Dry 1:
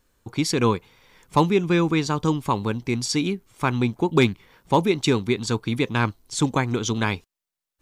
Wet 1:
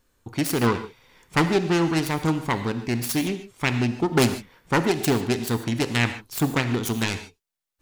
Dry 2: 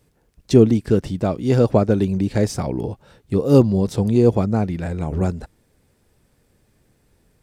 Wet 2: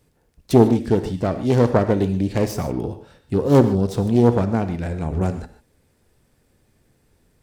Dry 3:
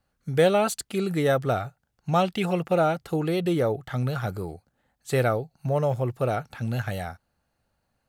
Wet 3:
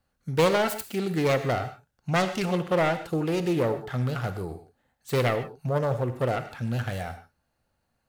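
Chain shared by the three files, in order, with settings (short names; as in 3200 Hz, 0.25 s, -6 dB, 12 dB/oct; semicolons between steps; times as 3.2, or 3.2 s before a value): self-modulated delay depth 0.33 ms; non-linear reverb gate 0.17 s flat, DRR 9 dB; gain -1 dB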